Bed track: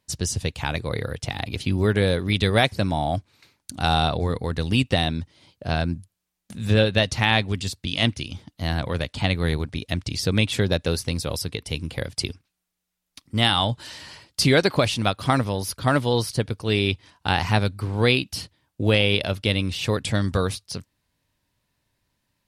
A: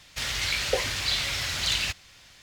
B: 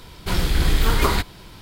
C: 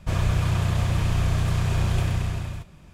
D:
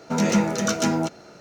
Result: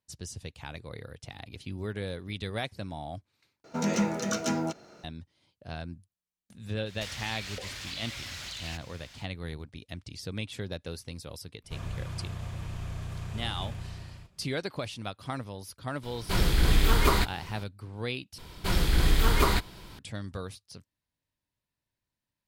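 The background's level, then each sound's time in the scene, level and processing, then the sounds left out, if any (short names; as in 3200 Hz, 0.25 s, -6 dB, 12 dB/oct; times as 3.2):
bed track -15 dB
3.64 replace with D -7 dB
6.85 add A -0.5 dB, fades 0.05 s + compressor, threshold -37 dBFS
11.64 add C -14.5 dB
16.03 add B -4 dB
18.38 replace with B -4.5 dB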